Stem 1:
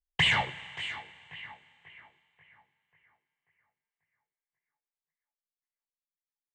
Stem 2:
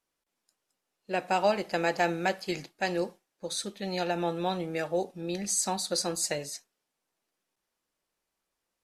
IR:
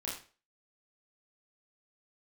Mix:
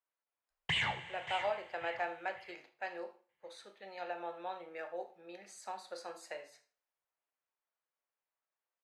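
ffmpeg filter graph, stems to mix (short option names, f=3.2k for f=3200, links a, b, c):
-filter_complex "[0:a]alimiter=limit=-19dB:level=0:latency=1:release=372,adelay=500,volume=-5dB,asplit=3[a][b][c];[a]atrim=end=2.52,asetpts=PTS-STARTPTS,afade=t=out:st=2.516:d=0.004:c=hsin[d];[b]atrim=start=2.52:end=3.29,asetpts=PTS-STARTPTS,volume=0[e];[c]atrim=start=3.29,asetpts=PTS-STARTPTS,afade=t=in:d=0.004:c=hsin[f];[d][e][f]concat=n=3:v=0:a=1,asplit=2[g][h];[h]volume=-17dB[i];[1:a]highpass=f=290:p=1,acrossover=split=470 2700:gain=0.112 1 0.112[j][k][l];[j][k][l]amix=inputs=3:normalize=0,volume=-10.5dB,asplit=3[m][n][o];[n]volume=-6dB[p];[o]volume=-23dB[q];[2:a]atrim=start_sample=2205[r];[p][r]afir=irnorm=-1:irlink=0[s];[i][q]amix=inputs=2:normalize=0,aecho=0:1:78|156|234|312|390:1|0.38|0.144|0.0549|0.0209[t];[g][m][s][t]amix=inputs=4:normalize=0"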